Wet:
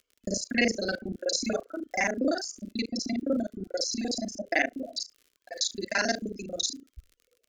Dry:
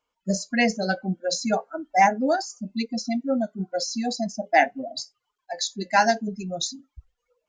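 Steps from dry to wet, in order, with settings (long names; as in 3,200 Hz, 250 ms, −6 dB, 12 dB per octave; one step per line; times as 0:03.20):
reversed piece by piece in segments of 34 ms
surface crackle 63 per second −44 dBFS
phaser with its sweep stopped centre 360 Hz, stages 4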